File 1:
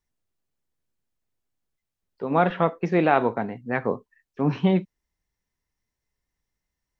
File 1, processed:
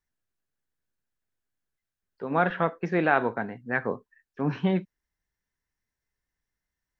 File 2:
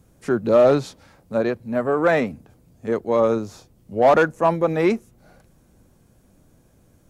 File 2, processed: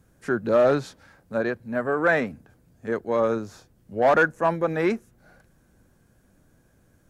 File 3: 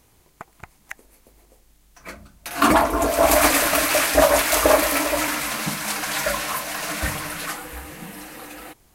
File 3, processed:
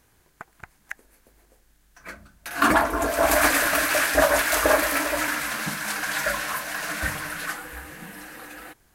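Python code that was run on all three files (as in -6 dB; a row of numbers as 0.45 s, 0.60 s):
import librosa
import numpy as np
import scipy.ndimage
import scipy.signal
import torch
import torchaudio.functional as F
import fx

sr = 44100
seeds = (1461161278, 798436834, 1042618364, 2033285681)

y = fx.peak_eq(x, sr, hz=1600.0, db=9.0, octaves=0.43)
y = y * 10.0 ** (-4.5 / 20.0)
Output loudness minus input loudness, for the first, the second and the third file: -3.5 LU, -3.5 LU, -3.0 LU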